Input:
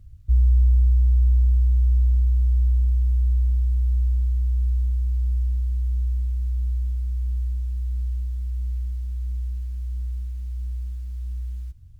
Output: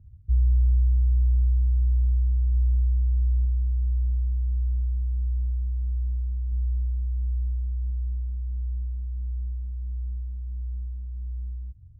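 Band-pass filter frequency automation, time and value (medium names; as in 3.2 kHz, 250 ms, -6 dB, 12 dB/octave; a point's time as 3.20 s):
band-pass filter, Q 0.6
140 Hz
from 2.54 s 120 Hz
from 3.45 s 140 Hz
from 6.52 s 100 Hz
from 7.90 s 120 Hz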